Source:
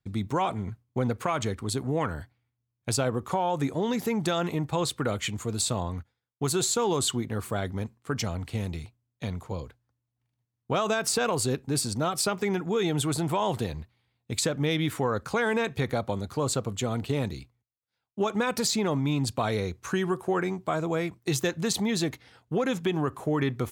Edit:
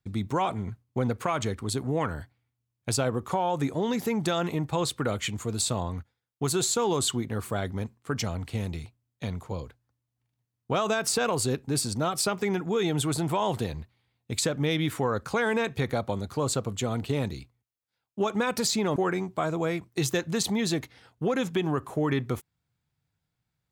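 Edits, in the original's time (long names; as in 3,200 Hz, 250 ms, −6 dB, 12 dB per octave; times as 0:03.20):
0:18.96–0:20.26: remove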